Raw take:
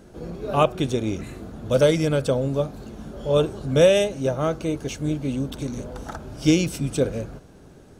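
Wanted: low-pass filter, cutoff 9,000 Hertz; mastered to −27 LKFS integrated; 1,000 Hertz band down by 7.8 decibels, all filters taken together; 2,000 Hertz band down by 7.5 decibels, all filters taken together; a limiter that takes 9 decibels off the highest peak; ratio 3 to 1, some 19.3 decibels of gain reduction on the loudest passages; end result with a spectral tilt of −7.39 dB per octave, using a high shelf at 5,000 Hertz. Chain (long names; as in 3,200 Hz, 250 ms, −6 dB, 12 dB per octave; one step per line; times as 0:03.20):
low-pass filter 9,000 Hz
parametric band 1,000 Hz −9 dB
parametric band 2,000 Hz −7 dB
high-shelf EQ 5,000 Hz −3.5 dB
downward compressor 3 to 1, threshold −41 dBFS
level +17 dB
brickwall limiter −18 dBFS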